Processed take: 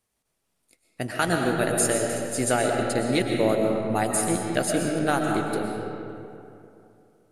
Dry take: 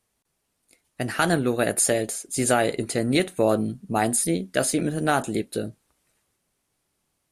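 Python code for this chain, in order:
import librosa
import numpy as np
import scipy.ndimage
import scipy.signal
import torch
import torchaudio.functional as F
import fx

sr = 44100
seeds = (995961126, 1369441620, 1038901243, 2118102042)

y = fx.transient(x, sr, attack_db=1, sustain_db=-8)
y = fx.rev_freeverb(y, sr, rt60_s=2.8, hf_ratio=0.55, predelay_ms=80, drr_db=1.0)
y = y * librosa.db_to_amplitude(-3.0)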